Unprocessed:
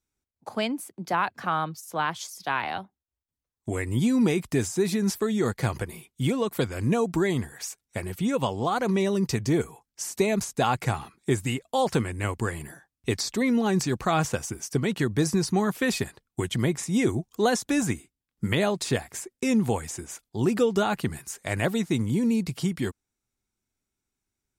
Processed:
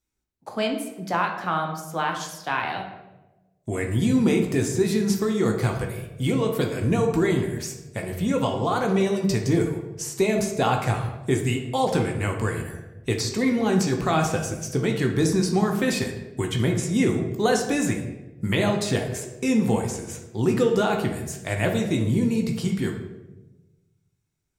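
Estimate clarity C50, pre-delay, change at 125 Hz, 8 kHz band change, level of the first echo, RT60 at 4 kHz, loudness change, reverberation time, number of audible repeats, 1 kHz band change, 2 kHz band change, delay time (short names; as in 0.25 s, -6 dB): 6.0 dB, 16 ms, +3.5 dB, +1.0 dB, none, 0.70 s, +2.5 dB, 1.1 s, none, +2.0 dB, +2.0 dB, none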